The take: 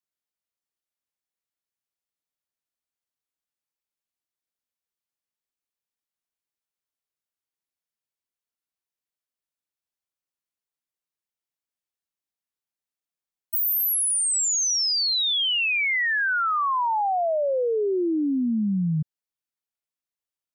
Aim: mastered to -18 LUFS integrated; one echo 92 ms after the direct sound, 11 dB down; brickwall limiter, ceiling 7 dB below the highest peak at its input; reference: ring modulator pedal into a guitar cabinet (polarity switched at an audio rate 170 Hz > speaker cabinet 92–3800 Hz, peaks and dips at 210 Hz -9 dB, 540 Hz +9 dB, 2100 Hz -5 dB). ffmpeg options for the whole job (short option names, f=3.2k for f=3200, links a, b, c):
-af "alimiter=level_in=3.5dB:limit=-24dB:level=0:latency=1,volume=-3.5dB,aecho=1:1:92:0.282,aeval=exprs='val(0)*sgn(sin(2*PI*170*n/s))':c=same,highpass=92,equalizer=f=210:t=q:w=4:g=-9,equalizer=f=540:t=q:w=4:g=9,equalizer=f=2.1k:t=q:w=4:g=-5,lowpass=f=3.8k:w=0.5412,lowpass=f=3.8k:w=1.3066,volume=12dB"